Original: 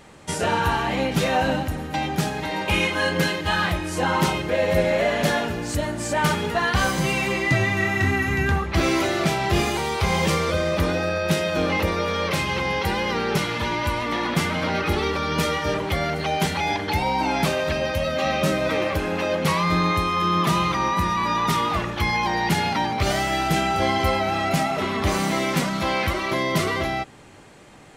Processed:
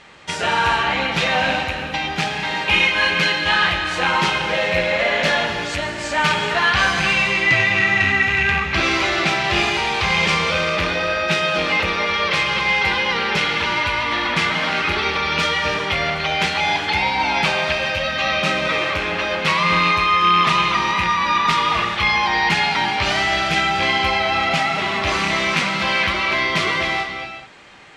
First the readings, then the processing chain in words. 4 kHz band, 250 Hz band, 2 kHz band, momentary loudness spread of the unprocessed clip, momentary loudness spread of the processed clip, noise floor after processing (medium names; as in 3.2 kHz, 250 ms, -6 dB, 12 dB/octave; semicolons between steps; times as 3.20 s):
+8.0 dB, -3.0 dB, +8.5 dB, 4 LU, 5 LU, -28 dBFS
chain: rattle on loud lows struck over -23 dBFS, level -18 dBFS; low-pass 3.7 kHz 12 dB/octave; tilt shelf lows -8 dB; gated-style reverb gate 450 ms flat, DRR 4.5 dB; trim +2.5 dB